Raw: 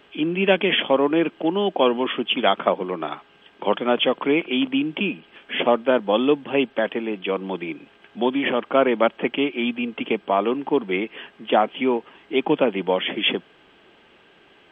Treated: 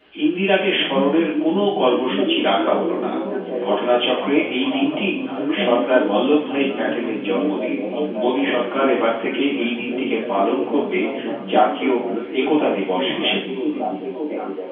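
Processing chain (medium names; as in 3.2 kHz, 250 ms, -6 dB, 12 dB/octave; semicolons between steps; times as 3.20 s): resampled via 11.025 kHz; repeats whose band climbs or falls 563 ms, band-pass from 160 Hz, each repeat 0.7 oct, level -0.5 dB; two-slope reverb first 0.47 s, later 1.5 s, from -17 dB, DRR -9.5 dB; trim -8.5 dB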